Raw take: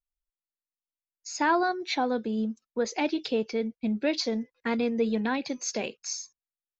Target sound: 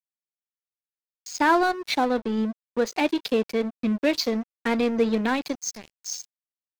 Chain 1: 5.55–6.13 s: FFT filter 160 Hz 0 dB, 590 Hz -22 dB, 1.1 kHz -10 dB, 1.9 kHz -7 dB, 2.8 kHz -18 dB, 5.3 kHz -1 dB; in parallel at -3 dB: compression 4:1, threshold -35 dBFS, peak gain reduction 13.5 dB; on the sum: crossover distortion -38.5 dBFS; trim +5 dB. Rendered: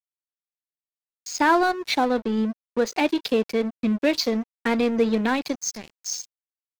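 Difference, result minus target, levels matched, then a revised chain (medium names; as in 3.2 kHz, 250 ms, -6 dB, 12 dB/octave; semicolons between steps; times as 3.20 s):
compression: peak gain reduction -9 dB
5.55–6.13 s: FFT filter 160 Hz 0 dB, 590 Hz -22 dB, 1.1 kHz -10 dB, 1.9 kHz -7 dB, 2.8 kHz -18 dB, 5.3 kHz -1 dB; in parallel at -3 dB: compression 4:1, threshold -47 dBFS, peak gain reduction 22.5 dB; on the sum: crossover distortion -38.5 dBFS; trim +5 dB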